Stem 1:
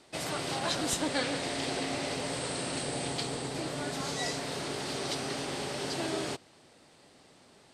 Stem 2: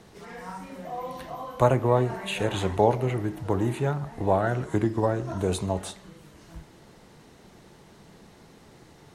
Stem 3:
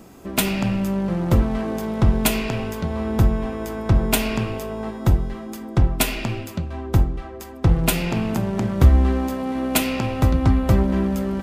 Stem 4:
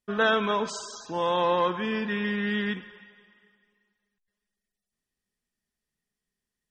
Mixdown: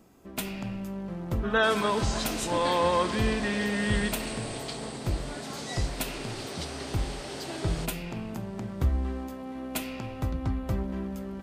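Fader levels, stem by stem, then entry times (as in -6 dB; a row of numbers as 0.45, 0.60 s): -3.0 dB, off, -13.0 dB, -1.0 dB; 1.50 s, off, 0.00 s, 1.35 s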